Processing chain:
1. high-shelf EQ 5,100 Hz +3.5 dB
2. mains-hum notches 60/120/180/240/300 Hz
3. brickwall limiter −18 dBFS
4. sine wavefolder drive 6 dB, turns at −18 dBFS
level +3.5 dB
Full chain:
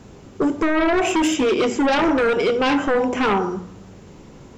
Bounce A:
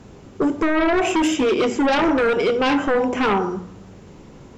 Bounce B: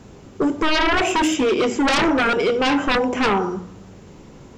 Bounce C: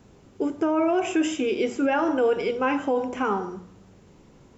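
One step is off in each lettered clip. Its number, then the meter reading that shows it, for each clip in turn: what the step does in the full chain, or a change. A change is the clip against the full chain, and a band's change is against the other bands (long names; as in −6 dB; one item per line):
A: 1, 8 kHz band −2.0 dB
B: 3, 4 kHz band +3.5 dB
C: 4, distortion level −5 dB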